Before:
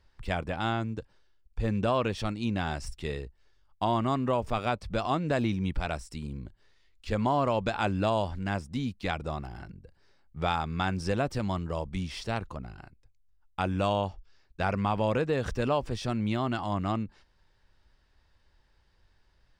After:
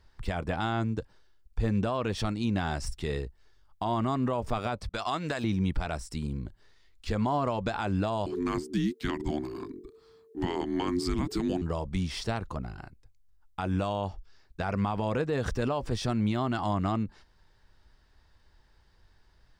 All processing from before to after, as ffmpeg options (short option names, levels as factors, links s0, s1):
-filter_complex "[0:a]asettb=1/sr,asplit=3[s0][s1][s2];[s0]atrim=end=4.894[s3];[s1]atrim=start=4.89:end=5.44,asetpts=PTS-STARTPTS,afade=t=in:d=0.004:c=qsin,afade=t=out:st=0.546:d=0.004:c=qsin,agate=range=0.0562:threshold=0.02:ratio=16:release=100:detection=peak,tiltshelf=f=770:g=-7.5[s4];[s2]atrim=start=5.436[s5];[s3][s4]acrossfade=d=0.004:c1=hsin:c2=qsin[s6];[s6][s5]acrossfade=d=0.004:c1=qsin:c2=hsin,asettb=1/sr,asplit=3[s7][s8][s9];[s7]atrim=end=8.264[s10];[s8]atrim=start=8.26:end=11.62,asetpts=PTS-STARTPTS,afade=t=in:d=0.004:c=qsin,afade=t=out:st=3.356:d=0.004:c=qsin,highshelf=f=8700:g=5.5,afreqshift=-450[s11];[s9]atrim=start=11.616[s12];[s10][s11]acrossfade=d=0.004:c1=hsin:c2=qsin[s13];[s13][s12]acrossfade=d=0.004:c1=qsin:c2=hsin,alimiter=limit=0.0668:level=0:latency=1:release=117,equalizer=f=2600:t=o:w=0.62:g=-3.5,bandreject=f=550:w=15,volume=1.58"